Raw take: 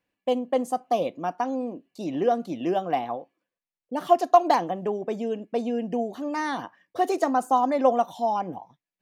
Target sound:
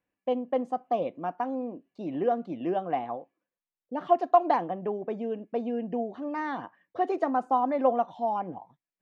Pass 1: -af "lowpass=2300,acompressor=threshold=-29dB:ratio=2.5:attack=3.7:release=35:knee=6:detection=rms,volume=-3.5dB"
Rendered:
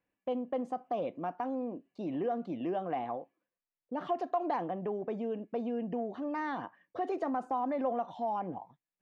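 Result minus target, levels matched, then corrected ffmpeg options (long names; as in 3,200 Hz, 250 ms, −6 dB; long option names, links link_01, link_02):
downward compressor: peak gain reduction +13 dB
-af "lowpass=2300,volume=-3.5dB"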